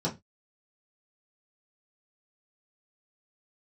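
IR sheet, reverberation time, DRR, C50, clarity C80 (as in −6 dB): 0.20 s, −6.0 dB, 15.5 dB, 24.0 dB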